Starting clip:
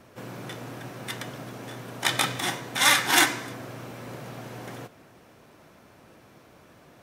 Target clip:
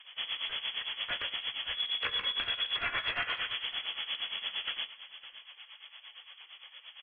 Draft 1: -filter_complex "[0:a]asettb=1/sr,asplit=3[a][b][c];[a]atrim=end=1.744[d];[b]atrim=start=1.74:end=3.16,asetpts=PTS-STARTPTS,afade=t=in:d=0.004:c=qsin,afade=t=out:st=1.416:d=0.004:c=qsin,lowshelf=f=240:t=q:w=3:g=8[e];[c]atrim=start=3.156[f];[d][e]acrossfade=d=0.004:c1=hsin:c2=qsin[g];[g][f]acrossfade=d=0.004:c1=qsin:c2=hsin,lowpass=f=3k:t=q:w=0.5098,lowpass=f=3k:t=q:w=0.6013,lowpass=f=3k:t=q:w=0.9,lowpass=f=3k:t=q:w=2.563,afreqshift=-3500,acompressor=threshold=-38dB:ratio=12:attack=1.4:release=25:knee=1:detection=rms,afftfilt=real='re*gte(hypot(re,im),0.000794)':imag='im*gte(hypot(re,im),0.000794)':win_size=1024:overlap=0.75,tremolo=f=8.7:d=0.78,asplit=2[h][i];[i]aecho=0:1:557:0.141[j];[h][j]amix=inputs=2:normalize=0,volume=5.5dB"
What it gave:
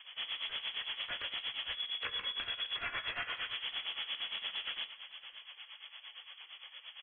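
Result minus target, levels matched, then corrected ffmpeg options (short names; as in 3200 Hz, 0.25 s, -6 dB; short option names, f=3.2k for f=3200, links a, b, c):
compressor: peak gain reduction +5.5 dB
-filter_complex "[0:a]asettb=1/sr,asplit=3[a][b][c];[a]atrim=end=1.744[d];[b]atrim=start=1.74:end=3.16,asetpts=PTS-STARTPTS,afade=t=in:d=0.004:c=qsin,afade=t=out:st=1.416:d=0.004:c=qsin,lowshelf=f=240:t=q:w=3:g=8[e];[c]atrim=start=3.156[f];[d][e]acrossfade=d=0.004:c1=hsin:c2=qsin[g];[g][f]acrossfade=d=0.004:c1=qsin:c2=hsin,lowpass=f=3k:t=q:w=0.5098,lowpass=f=3k:t=q:w=0.6013,lowpass=f=3k:t=q:w=0.9,lowpass=f=3k:t=q:w=2.563,afreqshift=-3500,acompressor=threshold=-32dB:ratio=12:attack=1.4:release=25:knee=1:detection=rms,afftfilt=real='re*gte(hypot(re,im),0.000794)':imag='im*gte(hypot(re,im),0.000794)':win_size=1024:overlap=0.75,tremolo=f=8.7:d=0.78,asplit=2[h][i];[i]aecho=0:1:557:0.141[j];[h][j]amix=inputs=2:normalize=0,volume=5.5dB"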